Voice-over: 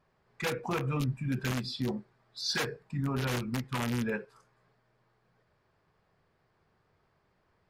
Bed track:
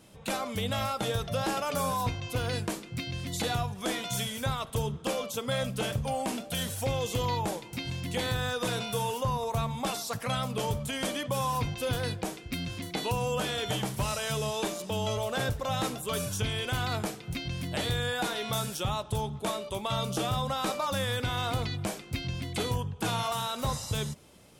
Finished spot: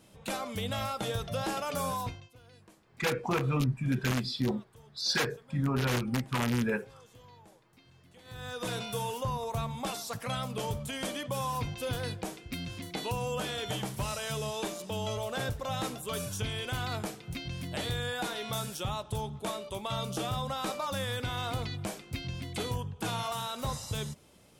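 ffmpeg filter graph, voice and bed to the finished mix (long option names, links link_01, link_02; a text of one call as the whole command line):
ffmpeg -i stem1.wav -i stem2.wav -filter_complex "[0:a]adelay=2600,volume=2.5dB[link_01];[1:a]volume=19dB,afade=type=out:start_time=1.94:duration=0.36:silence=0.0749894,afade=type=in:start_time=8.24:duration=0.48:silence=0.0794328[link_02];[link_01][link_02]amix=inputs=2:normalize=0" out.wav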